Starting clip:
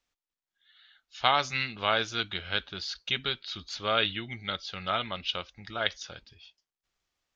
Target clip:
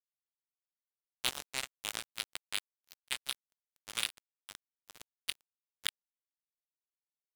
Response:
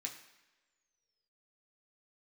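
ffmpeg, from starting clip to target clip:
-filter_complex "[0:a]equalizer=frequency=290:width=0.95:gain=-14.5,asplit=2[link_01][link_02];[link_02]adelay=21,volume=-8dB[link_03];[link_01][link_03]amix=inputs=2:normalize=0,asplit=2[link_04][link_05];[link_05]acrusher=bits=2:mode=log:mix=0:aa=0.000001,volume=-8.5dB[link_06];[link_04][link_06]amix=inputs=2:normalize=0,bandreject=frequency=1000:width=16[link_07];[1:a]atrim=start_sample=2205,asetrate=48510,aresample=44100[link_08];[link_07][link_08]afir=irnorm=-1:irlink=0,acrossover=split=3400[link_09][link_10];[link_09]alimiter=limit=-22.5dB:level=0:latency=1:release=246[link_11];[link_11][link_10]amix=inputs=2:normalize=0,acompressor=mode=upward:threshold=-34dB:ratio=2.5,highshelf=frequency=2500:gain=7,acrusher=bits=2:mix=0:aa=0.5,volume=-1.5dB"

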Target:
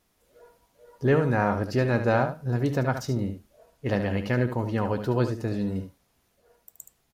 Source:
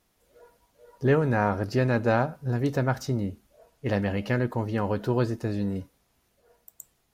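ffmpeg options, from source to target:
ffmpeg -i in.wav -af "aecho=1:1:73:0.355" out.wav

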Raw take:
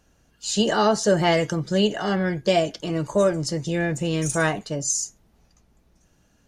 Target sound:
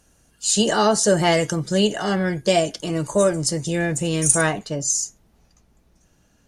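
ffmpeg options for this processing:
ffmpeg -i in.wav -af "asetnsamples=nb_out_samples=441:pad=0,asendcmd='4.41 equalizer g 2.5',equalizer=frequency=9400:width_type=o:width=0.79:gain=14,volume=1.5dB" out.wav

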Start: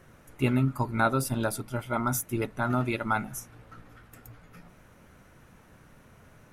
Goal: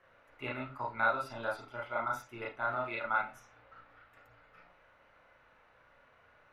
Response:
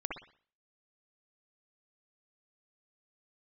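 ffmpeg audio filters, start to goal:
-filter_complex "[0:a]acrossover=split=500 3800:gain=0.141 1 0.0891[link_01][link_02][link_03];[link_01][link_02][link_03]amix=inputs=3:normalize=0[link_04];[1:a]atrim=start_sample=2205,asetrate=79380,aresample=44100[link_05];[link_04][link_05]afir=irnorm=-1:irlink=0"

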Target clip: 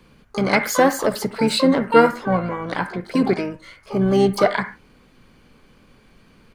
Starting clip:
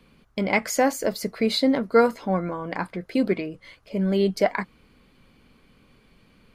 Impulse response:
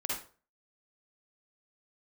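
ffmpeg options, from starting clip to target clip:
-filter_complex "[0:a]asplit=3[link_01][link_02][link_03];[link_02]asetrate=29433,aresample=44100,atempo=1.49831,volume=-12dB[link_04];[link_03]asetrate=88200,aresample=44100,atempo=0.5,volume=-10dB[link_05];[link_01][link_04][link_05]amix=inputs=3:normalize=0,asplit=2[link_06][link_07];[link_07]lowpass=frequency=1700:width_type=q:width=3.3[link_08];[1:a]atrim=start_sample=2205,afade=type=out:start_time=0.21:duration=0.01,atrim=end_sample=9702,highshelf=frequency=3200:gain=10.5[link_09];[link_08][link_09]afir=irnorm=-1:irlink=0,volume=-19dB[link_10];[link_06][link_10]amix=inputs=2:normalize=0,volume=3dB"

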